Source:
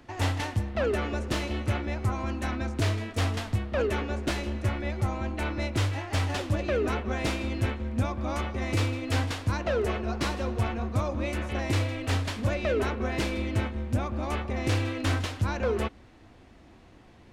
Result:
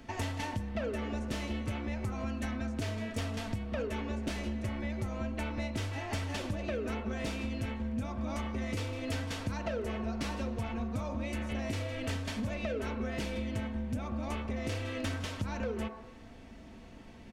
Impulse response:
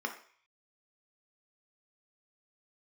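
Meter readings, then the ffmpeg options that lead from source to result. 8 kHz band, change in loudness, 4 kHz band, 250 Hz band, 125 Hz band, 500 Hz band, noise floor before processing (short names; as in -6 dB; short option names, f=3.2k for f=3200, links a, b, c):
-6.0 dB, -7.0 dB, -7.0 dB, -3.5 dB, -8.5 dB, -7.5 dB, -53 dBFS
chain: -filter_complex "[0:a]aecho=1:1:4.5:0.4,asplit=2[a][b];[1:a]atrim=start_sample=2205,asetrate=33516,aresample=44100[c];[b][c]afir=irnorm=-1:irlink=0,volume=-12.5dB[d];[a][d]amix=inputs=2:normalize=0,acompressor=threshold=-35dB:ratio=6,volume=2.5dB"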